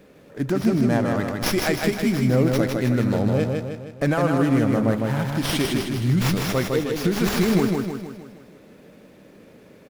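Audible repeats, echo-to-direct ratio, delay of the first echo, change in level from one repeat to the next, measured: 6, -2.0 dB, 156 ms, -6.0 dB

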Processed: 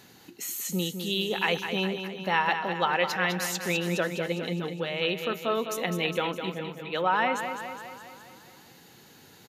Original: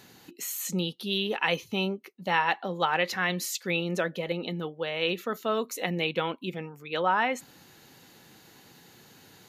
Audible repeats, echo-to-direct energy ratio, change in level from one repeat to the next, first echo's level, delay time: 6, -6.0 dB, -4.5 dB, -8.0 dB, 205 ms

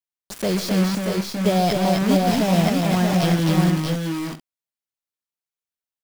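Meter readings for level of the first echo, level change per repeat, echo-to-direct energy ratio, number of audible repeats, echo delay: -14.0 dB, no regular repeats, 0.0 dB, 4, 132 ms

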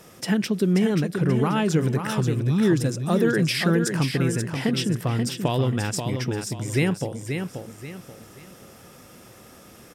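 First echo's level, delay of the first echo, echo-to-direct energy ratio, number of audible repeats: -6.5 dB, 533 ms, -6.0 dB, 3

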